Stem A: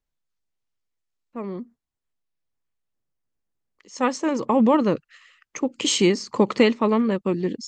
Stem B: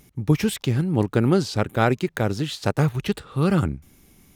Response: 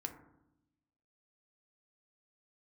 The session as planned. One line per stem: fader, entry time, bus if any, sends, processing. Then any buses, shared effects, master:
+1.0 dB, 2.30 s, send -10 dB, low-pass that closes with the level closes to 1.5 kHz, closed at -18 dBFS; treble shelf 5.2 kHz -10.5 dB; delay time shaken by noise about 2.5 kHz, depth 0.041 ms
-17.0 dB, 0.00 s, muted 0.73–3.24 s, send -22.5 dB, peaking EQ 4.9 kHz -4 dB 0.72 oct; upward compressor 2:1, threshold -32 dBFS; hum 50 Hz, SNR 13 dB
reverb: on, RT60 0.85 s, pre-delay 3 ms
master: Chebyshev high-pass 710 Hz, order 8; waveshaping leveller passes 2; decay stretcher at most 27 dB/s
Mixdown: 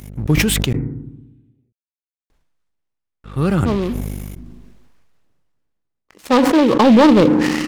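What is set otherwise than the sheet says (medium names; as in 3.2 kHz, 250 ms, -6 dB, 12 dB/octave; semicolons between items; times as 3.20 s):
stem B -17.0 dB -> -5.5 dB; master: missing Chebyshev high-pass 710 Hz, order 8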